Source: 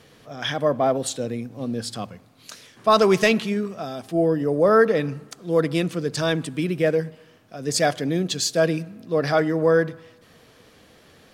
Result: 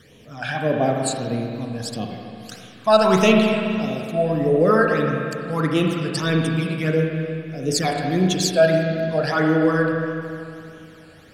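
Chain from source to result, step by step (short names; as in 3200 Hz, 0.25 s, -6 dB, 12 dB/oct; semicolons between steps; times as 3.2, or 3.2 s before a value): phaser stages 12, 1.6 Hz, lowest notch 330–1600 Hz; spring tank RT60 2.6 s, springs 32/37/60 ms, chirp 60 ms, DRR 0.5 dB; gain +3 dB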